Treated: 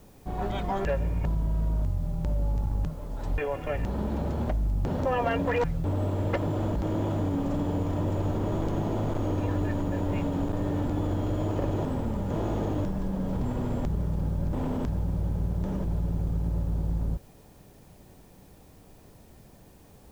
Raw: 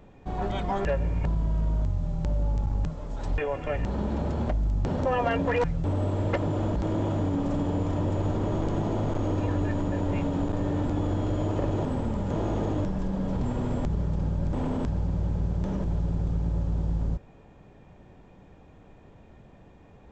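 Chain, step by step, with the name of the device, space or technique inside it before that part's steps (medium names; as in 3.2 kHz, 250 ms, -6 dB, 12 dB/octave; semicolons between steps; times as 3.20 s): plain cassette with noise reduction switched in (tape noise reduction on one side only decoder only; wow and flutter 17 cents; white noise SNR 35 dB); trim -1 dB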